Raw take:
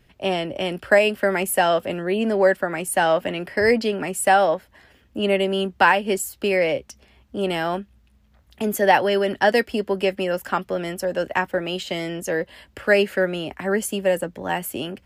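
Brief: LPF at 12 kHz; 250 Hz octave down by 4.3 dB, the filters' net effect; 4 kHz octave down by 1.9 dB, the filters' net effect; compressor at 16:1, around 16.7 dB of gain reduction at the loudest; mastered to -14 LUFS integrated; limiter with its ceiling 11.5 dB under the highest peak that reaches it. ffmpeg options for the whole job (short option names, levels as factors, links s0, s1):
-af "lowpass=12000,equalizer=f=250:t=o:g=-6.5,equalizer=f=4000:t=o:g=-3,acompressor=threshold=0.0398:ratio=16,volume=11.2,alimiter=limit=0.631:level=0:latency=1"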